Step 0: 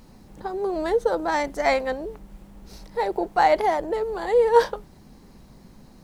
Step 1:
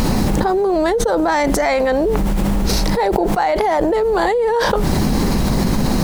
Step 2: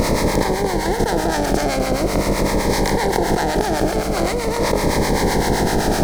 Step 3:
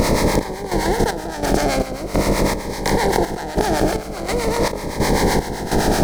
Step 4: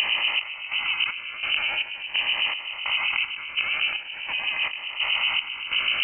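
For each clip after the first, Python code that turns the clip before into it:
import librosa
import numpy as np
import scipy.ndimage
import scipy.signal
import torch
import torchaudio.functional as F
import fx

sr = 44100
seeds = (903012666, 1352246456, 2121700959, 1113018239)

y1 = fx.env_flatten(x, sr, amount_pct=100)
y1 = y1 * 10.0 ** (-4.5 / 20.0)
y2 = fx.bin_compress(y1, sr, power=0.2)
y2 = fx.harmonic_tremolo(y2, sr, hz=7.8, depth_pct=70, crossover_hz=720.0)
y2 = fx.notch_cascade(y2, sr, direction='falling', hz=0.44)
y2 = y2 * 10.0 ** (-6.0 / 20.0)
y3 = fx.chopper(y2, sr, hz=1.4, depth_pct=65, duty_pct=55)
y3 = y3 * 10.0 ** (1.0 / 20.0)
y4 = fx.freq_invert(y3, sr, carrier_hz=3000)
y4 = y4 * 10.0 ** (-8.0 / 20.0)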